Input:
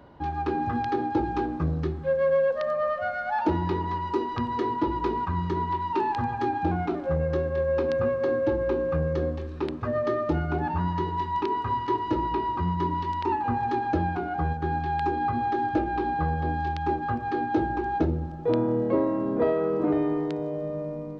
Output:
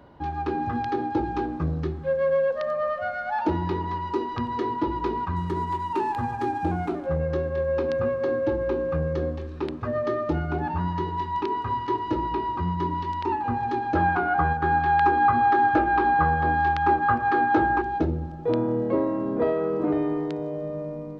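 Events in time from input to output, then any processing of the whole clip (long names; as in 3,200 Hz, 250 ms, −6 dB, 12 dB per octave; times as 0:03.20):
0:05.36–0:07.06: running median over 9 samples
0:13.95–0:17.82: parametric band 1,300 Hz +12.5 dB 1.7 octaves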